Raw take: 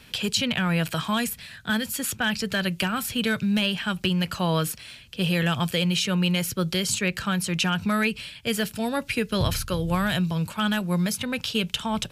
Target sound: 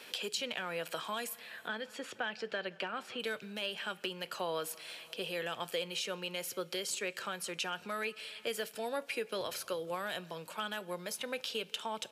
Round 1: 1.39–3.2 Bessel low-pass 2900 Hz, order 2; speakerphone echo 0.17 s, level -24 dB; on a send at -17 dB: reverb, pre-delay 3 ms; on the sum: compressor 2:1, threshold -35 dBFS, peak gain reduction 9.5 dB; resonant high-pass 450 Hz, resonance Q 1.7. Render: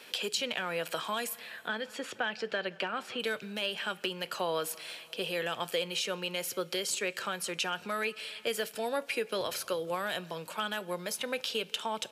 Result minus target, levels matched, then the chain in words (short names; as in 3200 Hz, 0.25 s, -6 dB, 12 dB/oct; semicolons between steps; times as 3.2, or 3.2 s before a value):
compressor: peak gain reduction -4 dB
1.39–3.2 Bessel low-pass 2900 Hz, order 2; speakerphone echo 0.17 s, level -24 dB; on a send at -17 dB: reverb, pre-delay 3 ms; on the sum: compressor 2:1, threshold -43.5 dBFS, peak gain reduction 13.5 dB; resonant high-pass 450 Hz, resonance Q 1.7